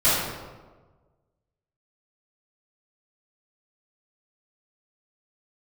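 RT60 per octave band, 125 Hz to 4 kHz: 1.6 s, 1.4 s, 1.4 s, 1.3 s, 0.95 s, 0.80 s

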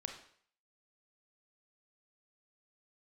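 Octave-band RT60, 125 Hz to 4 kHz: 0.50 s, 0.50 s, 0.55 s, 0.55 s, 0.55 s, 0.55 s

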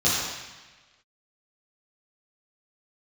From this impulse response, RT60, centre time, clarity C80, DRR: 1.2 s, 91 ms, 1.0 dB, -10.0 dB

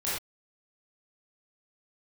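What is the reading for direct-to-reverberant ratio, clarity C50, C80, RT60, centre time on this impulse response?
-10.0 dB, -1.0 dB, 4.0 dB, no single decay rate, 59 ms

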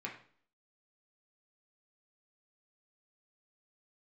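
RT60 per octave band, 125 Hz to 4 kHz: 0.50 s, 0.60 s, 0.50 s, 0.50 s, 0.45 s, 0.45 s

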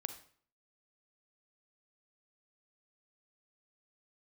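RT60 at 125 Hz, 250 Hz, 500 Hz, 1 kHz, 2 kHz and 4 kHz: 0.60 s, 0.55 s, 0.50 s, 0.55 s, 0.50 s, 0.45 s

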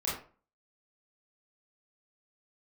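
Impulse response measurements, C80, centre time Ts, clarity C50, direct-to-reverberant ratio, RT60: 8.5 dB, 43 ms, 3.5 dB, -7.5 dB, 0.40 s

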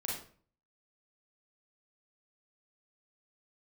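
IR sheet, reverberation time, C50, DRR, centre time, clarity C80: 0.45 s, 2.0 dB, -4.0 dB, 46 ms, 7.0 dB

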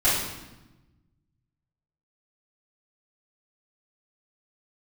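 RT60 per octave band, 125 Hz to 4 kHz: 2.0 s, 1.5 s, 1.1 s, 1.0 s, 0.95 s, 0.85 s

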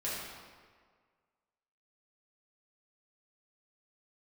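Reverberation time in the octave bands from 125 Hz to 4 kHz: 1.5 s, 1.6 s, 1.7 s, 1.7 s, 1.5 s, 1.2 s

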